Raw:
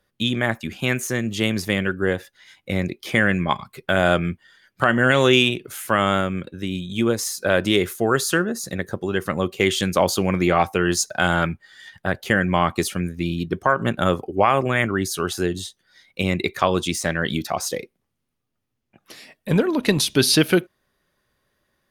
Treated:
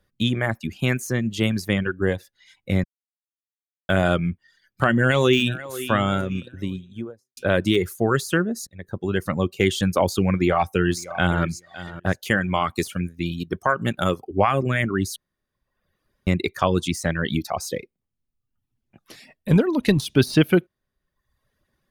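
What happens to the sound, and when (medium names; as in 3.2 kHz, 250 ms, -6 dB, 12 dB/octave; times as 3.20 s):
2.84–3.89 s: mute
4.90–5.72 s: echo throw 490 ms, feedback 45%, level -13.5 dB
6.37–7.37 s: studio fade out
8.67–9.11 s: fade in
10.34–11.43 s: echo throw 560 ms, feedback 20%, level -14.5 dB
12.12–14.31 s: tilt EQ +1.5 dB/octave
15.16–16.27 s: room tone
whole clip: reverb removal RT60 0.88 s; de-esser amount 45%; bass shelf 220 Hz +9.5 dB; trim -2.5 dB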